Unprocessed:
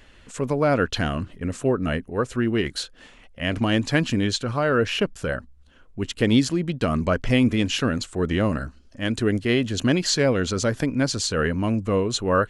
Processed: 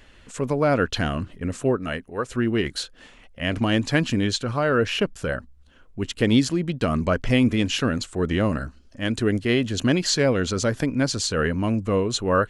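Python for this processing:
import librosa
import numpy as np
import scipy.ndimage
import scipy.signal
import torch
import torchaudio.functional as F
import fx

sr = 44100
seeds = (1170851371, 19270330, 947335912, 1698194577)

y = fx.low_shelf(x, sr, hz=420.0, db=-8.0, at=(1.77, 2.29))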